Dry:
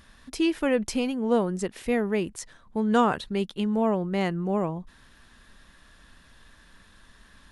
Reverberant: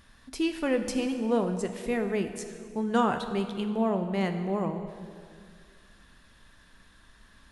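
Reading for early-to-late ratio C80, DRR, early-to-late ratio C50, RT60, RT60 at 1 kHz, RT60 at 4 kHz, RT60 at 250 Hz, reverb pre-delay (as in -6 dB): 9.5 dB, 7.0 dB, 9.0 dB, 2.1 s, 2.0 s, 1.7 s, 2.5 s, 7 ms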